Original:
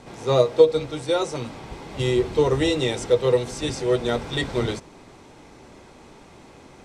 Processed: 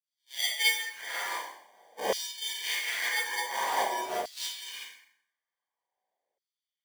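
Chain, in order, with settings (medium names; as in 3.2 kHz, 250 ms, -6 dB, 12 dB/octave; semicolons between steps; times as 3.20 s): knee-point frequency compression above 1.4 kHz 1.5:1; spectral noise reduction 19 dB; gate with hold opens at -44 dBFS; differentiator; hum notches 50/100/150/200/250/300/350/400/450 Hz; sample-and-hold 33×; Schroeder reverb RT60 0.6 s, combs from 32 ms, DRR -8.5 dB; LFO high-pass saw down 0.47 Hz 550–4600 Hz; trim +8 dB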